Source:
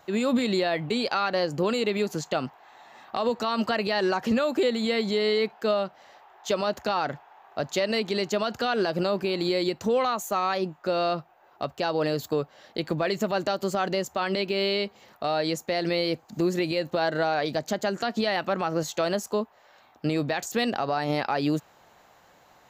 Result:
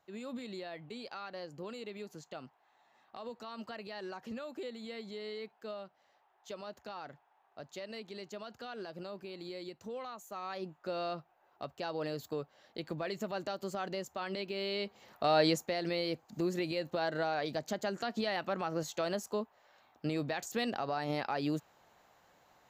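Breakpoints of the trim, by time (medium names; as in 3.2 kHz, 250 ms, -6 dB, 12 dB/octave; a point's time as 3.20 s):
10.25 s -18.5 dB
10.72 s -11.5 dB
14.64 s -11.5 dB
15.43 s +0.5 dB
15.76 s -8.5 dB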